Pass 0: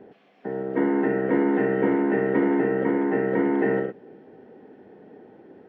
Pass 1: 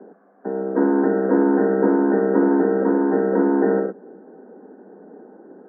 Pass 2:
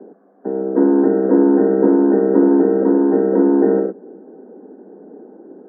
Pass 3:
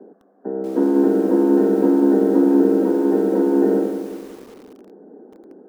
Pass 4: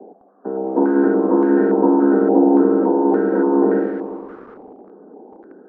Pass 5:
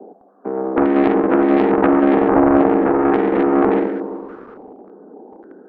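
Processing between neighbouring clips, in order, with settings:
Chebyshev band-pass 180–1600 Hz, order 5; trim +5 dB
FFT filter 150 Hz 0 dB, 320 Hz +6 dB, 1.5 kHz -5 dB
bit-crushed delay 187 ms, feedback 55%, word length 6-bit, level -8.5 dB; trim -4 dB
step-sequenced low-pass 3.5 Hz 790–1700 Hz
self-modulated delay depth 0.6 ms; trim +1.5 dB

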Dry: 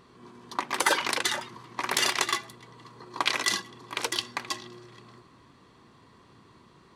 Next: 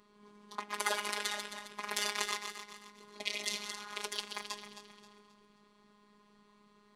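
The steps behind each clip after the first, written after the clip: backward echo that repeats 133 ms, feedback 59%, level -7 dB; spectral replace 2.99–3.94 s, 780–1900 Hz both; robot voice 207 Hz; trim -7.5 dB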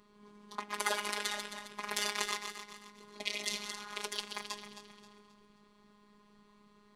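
bass shelf 150 Hz +6.5 dB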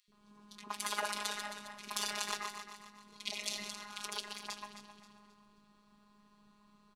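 three bands offset in time highs, lows, mids 80/120 ms, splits 390/2300 Hz; trim -1 dB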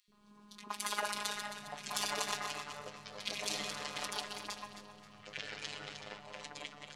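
ever faster or slower copies 728 ms, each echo -6 st, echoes 2, each echo -6 dB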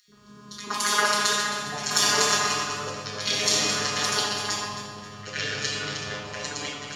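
reverberation RT60 1.1 s, pre-delay 3 ms, DRR -1.5 dB; trim +7.5 dB

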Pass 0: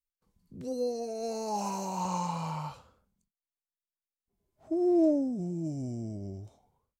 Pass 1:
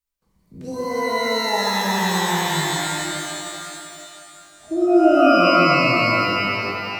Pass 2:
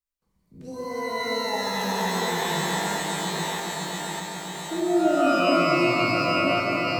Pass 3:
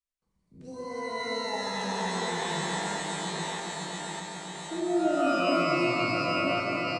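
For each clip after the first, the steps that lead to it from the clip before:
pitch-shifted reverb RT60 2.7 s, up +12 st, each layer -2 dB, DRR -4 dB; trim +4.5 dB
backward echo that repeats 600 ms, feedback 57%, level -4 dB; echo with a slow build-up 137 ms, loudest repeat 5, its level -14 dB; trim -7 dB
resampled via 22.05 kHz; trim -5 dB

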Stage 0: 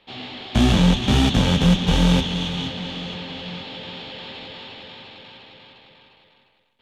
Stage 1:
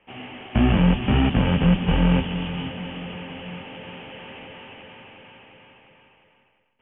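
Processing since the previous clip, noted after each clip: steep low-pass 3 kHz 96 dB/octave; trim -1.5 dB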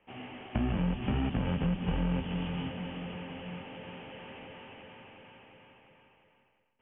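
treble shelf 2.9 kHz -7 dB; compression 4:1, threshold -22 dBFS, peak gain reduction 8 dB; trim -5.5 dB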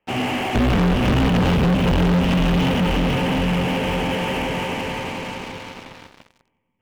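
two-band feedback delay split 370 Hz, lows 491 ms, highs 176 ms, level -7 dB; waveshaping leveller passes 5; trim +4 dB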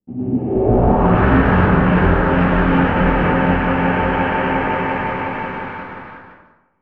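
low-pass sweep 240 Hz -> 1.6 kHz, 0.18–1.15 s; plate-style reverb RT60 0.81 s, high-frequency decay 0.45×, pre-delay 85 ms, DRR -9.5 dB; trim -6 dB

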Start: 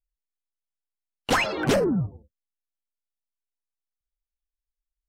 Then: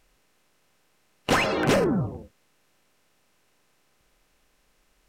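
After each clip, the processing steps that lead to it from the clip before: spectral levelling over time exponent 0.6; trim -2 dB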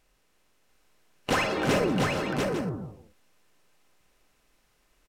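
multi-tap echo 53/186/330/427/693/850 ms -8/-16.5/-10/-13.5/-3.5/-11 dB; trim -4 dB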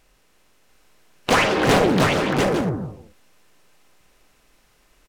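loudspeaker Doppler distortion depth 0.98 ms; trim +8.5 dB

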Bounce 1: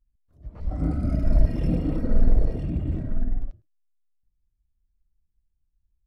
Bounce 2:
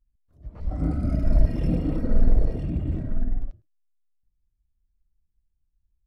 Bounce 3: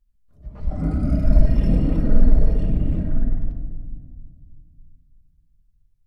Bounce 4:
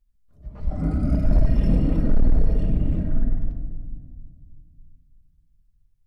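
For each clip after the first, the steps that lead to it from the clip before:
no audible change
band-stop 380 Hz, Q 12; reverberation RT60 1.9 s, pre-delay 5 ms, DRR 4 dB; trim +2 dB
hard clipper -9.5 dBFS, distortion -13 dB; trim -1 dB

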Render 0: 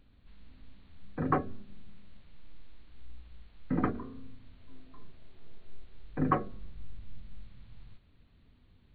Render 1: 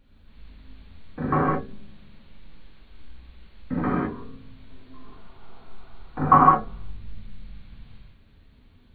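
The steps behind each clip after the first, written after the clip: time-frequency box 5.05–6.74 s, 650–1500 Hz +10 dB; gated-style reverb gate 230 ms flat, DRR -7.5 dB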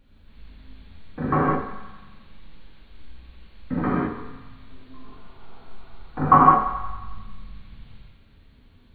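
thinning echo 90 ms, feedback 70%, high-pass 510 Hz, level -10 dB; trim +1 dB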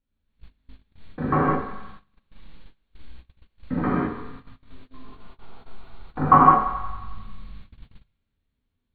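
gate -39 dBFS, range -24 dB

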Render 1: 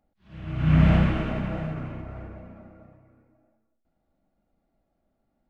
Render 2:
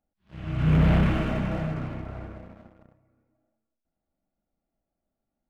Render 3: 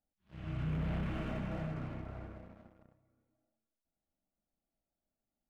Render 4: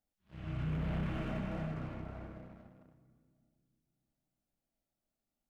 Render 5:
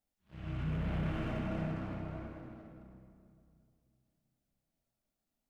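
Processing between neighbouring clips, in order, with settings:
waveshaping leveller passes 2; trim -6 dB
compression 5:1, threshold -26 dBFS, peak gain reduction 9 dB; trim -8 dB
two-band feedback delay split 350 Hz, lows 309 ms, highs 120 ms, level -14 dB
reverberation RT60 2.3 s, pre-delay 43 ms, DRR 4.5 dB

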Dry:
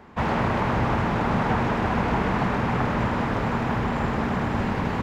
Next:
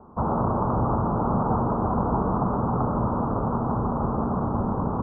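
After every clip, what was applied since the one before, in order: steep low-pass 1.3 kHz 72 dB/octave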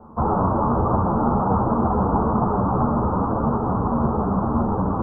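three-phase chorus; trim +7 dB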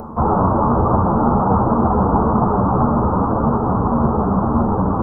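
upward compressor, threshold -28 dBFS; trim +4.5 dB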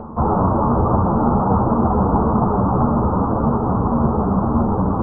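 distance through air 490 m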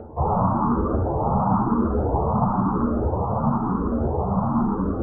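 barber-pole phaser +1 Hz; trim -2 dB

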